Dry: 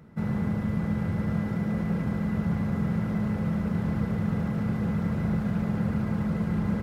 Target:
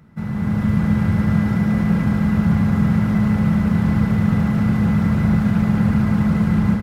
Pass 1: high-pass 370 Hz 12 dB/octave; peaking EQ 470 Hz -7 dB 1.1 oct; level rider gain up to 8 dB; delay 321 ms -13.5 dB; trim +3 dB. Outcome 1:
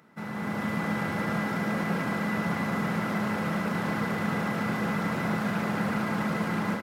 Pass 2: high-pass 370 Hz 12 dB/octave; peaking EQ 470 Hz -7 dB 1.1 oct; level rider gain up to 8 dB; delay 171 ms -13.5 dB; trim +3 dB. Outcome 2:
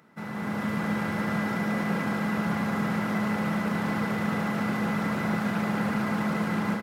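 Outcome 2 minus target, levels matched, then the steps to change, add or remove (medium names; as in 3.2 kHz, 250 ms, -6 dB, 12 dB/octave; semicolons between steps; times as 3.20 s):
500 Hz band +9.0 dB
remove: high-pass 370 Hz 12 dB/octave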